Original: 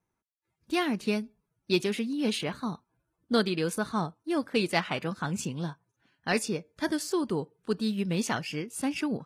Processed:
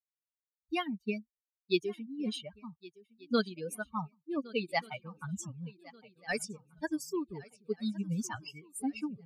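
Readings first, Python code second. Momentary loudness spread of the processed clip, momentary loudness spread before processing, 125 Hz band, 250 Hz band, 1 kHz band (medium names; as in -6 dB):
14 LU, 7 LU, -7.5 dB, -6.5 dB, -6.0 dB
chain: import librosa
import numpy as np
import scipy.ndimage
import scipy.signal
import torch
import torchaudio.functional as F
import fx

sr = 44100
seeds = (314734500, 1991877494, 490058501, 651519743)

y = fx.bin_expand(x, sr, power=3.0)
y = fx.echo_swing(y, sr, ms=1484, ratio=3, feedback_pct=34, wet_db=-21.5)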